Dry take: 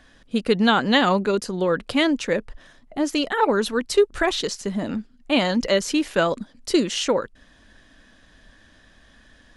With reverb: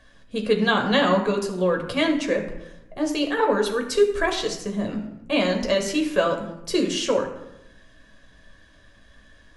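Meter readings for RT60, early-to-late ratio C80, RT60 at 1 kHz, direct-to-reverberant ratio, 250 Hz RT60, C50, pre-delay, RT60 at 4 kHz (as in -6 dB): 0.85 s, 10.0 dB, 0.80 s, 2.5 dB, 1.1 s, 8.0 dB, 9 ms, 0.55 s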